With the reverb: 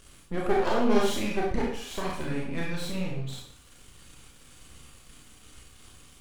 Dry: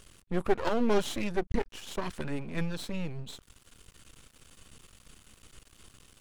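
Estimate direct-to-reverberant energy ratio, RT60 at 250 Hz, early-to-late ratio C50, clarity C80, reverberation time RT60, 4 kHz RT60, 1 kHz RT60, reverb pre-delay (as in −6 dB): −3.5 dB, 0.55 s, 2.0 dB, 6.0 dB, 0.55 s, 0.50 s, 0.55 s, 26 ms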